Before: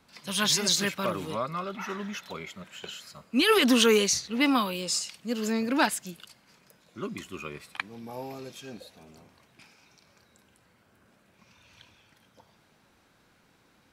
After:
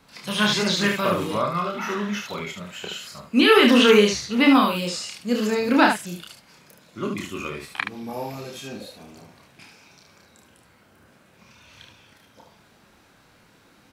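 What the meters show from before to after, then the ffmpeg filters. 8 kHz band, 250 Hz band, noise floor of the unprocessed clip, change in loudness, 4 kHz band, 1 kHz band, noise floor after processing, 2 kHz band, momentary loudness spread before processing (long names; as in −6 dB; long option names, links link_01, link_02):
−3.5 dB, +7.5 dB, −64 dBFS, +5.5 dB, +4.0 dB, +7.5 dB, −57 dBFS, +7.5 dB, 20 LU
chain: -filter_complex "[0:a]aecho=1:1:29|73:0.668|0.531,acrossover=split=3700[link_01][link_02];[link_02]acompressor=threshold=-41dB:ratio=4:attack=1:release=60[link_03];[link_01][link_03]amix=inputs=2:normalize=0,volume=5.5dB"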